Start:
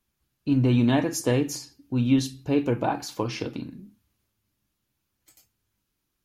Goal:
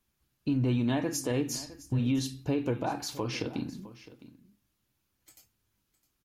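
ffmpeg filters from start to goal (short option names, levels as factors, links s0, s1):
-filter_complex "[0:a]asplit=3[s0][s1][s2];[s0]afade=t=out:st=1.53:d=0.02[s3];[s1]asubboost=boost=10.5:cutoff=110,afade=t=in:st=1.53:d=0.02,afade=t=out:st=1.98:d=0.02[s4];[s2]afade=t=in:st=1.98:d=0.02[s5];[s3][s4][s5]amix=inputs=3:normalize=0,alimiter=limit=0.0944:level=0:latency=1:release=168,aecho=1:1:660:0.133"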